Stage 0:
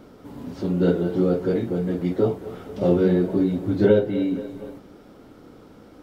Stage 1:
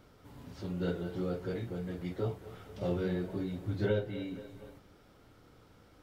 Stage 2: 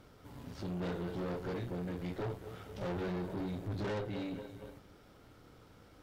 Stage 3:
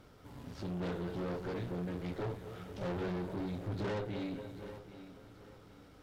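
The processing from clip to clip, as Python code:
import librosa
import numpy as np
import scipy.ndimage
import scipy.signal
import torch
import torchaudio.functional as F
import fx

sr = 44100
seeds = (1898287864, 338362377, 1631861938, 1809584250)

y1 = fx.curve_eq(x, sr, hz=(110.0, 240.0, 2000.0), db=(0, -12, -1))
y1 = y1 * 10.0 ** (-6.0 / 20.0)
y2 = fx.tube_stage(y1, sr, drive_db=39.0, bias=0.65)
y2 = y2 * 10.0 ** (4.5 / 20.0)
y3 = fx.echo_feedback(y2, sr, ms=784, feedback_pct=32, wet_db=-13.5)
y3 = fx.doppler_dist(y3, sr, depth_ms=0.16)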